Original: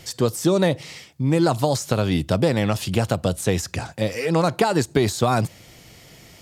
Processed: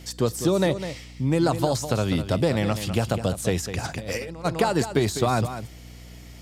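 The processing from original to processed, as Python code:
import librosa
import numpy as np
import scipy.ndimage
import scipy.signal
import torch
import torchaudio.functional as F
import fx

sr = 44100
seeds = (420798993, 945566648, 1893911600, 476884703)

y = x + 10.0 ** (-10.5 / 20.0) * np.pad(x, (int(202 * sr / 1000.0), 0))[:len(x)]
y = fx.over_compress(y, sr, threshold_db=-31.0, ratio=-1.0, at=(3.83, 4.44), fade=0.02)
y = fx.add_hum(y, sr, base_hz=60, snr_db=19)
y = F.gain(torch.from_numpy(y), -3.0).numpy()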